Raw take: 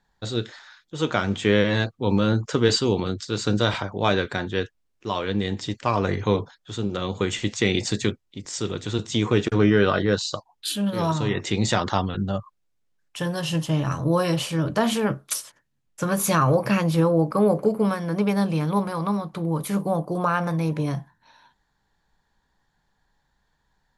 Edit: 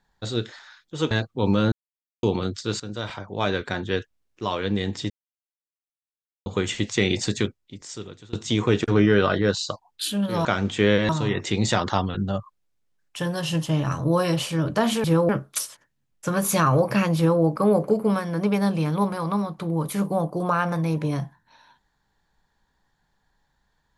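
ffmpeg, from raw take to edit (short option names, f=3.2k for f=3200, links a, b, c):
-filter_complex "[0:a]asplit=12[a][b][c][d][e][f][g][h][i][j][k][l];[a]atrim=end=1.112[m];[b]atrim=start=1.748:end=2.36,asetpts=PTS-STARTPTS,afade=t=out:st=0.608:d=0.004:c=hsin[n];[c]atrim=start=2.36:end=2.87,asetpts=PTS-STARTPTS,volume=0[o];[d]atrim=start=2.87:end=3.44,asetpts=PTS-STARTPTS,afade=t=in:d=0.004:c=hsin,afade=t=out:st=0.566:d=0.004:c=hsin:silence=0.16788[p];[e]atrim=start=3.44:end=5.74,asetpts=PTS-STARTPTS,afade=t=in:d=1.06:silence=0.16788,afade=t=out:st=2.296:d=0.004:c=hsin[q];[f]atrim=start=5.74:end=7.1,asetpts=PTS-STARTPTS,volume=0[r];[g]atrim=start=7.1:end=8.97,asetpts=PTS-STARTPTS,afade=t=in:d=0.004:c=hsin,afade=t=out:st=0.9:d=0.97:silence=0.0668344[s];[h]atrim=start=8.97:end=11.092,asetpts=PTS-STARTPTS,afade=t=in:d=0.004:c=hsin:silence=0.0668344[t];[i]atrim=start=1.108:end=1.752[u];[j]atrim=start=11.088:end=15.042[v];[k]atrim=start=16.908:end=17.162[w];[l]atrim=start=15.038[x];[n][o][p][q][r][s][t]concat=n=7:v=0:a=1[y];[m][y]acrossfade=d=0.004:c1=hsin:c2=hsin[z];[z][u]acrossfade=d=0.004:c1=hsin:c2=hsin[aa];[aa][v]acrossfade=d=0.004:c1=hsin:c2=hsin[ab];[ab][w]acrossfade=d=0.004:c1=hsin:c2=hsin[ac];[ac][x]acrossfade=d=0.004:c1=hsin:c2=hsin"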